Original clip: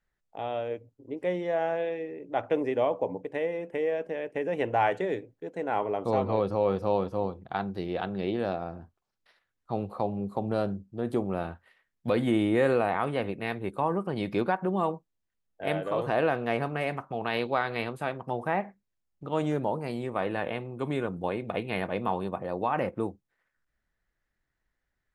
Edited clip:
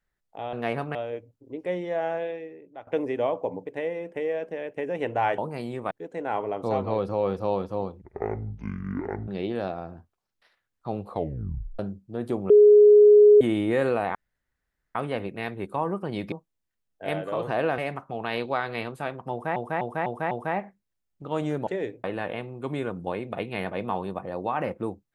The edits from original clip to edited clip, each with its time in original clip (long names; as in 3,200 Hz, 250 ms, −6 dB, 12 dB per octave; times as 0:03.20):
0:01.76–0:02.45: fade out, to −19 dB
0:04.96–0:05.33: swap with 0:19.68–0:20.21
0:07.44–0:08.12: play speed 54%
0:09.94: tape stop 0.69 s
0:11.34–0:12.25: beep over 417 Hz −10 dBFS
0:12.99: splice in room tone 0.80 s
0:14.36–0:14.91: remove
0:16.37–0:16.79: move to 0:00.53
0:18.32–0:18.57: repeat, 5 plays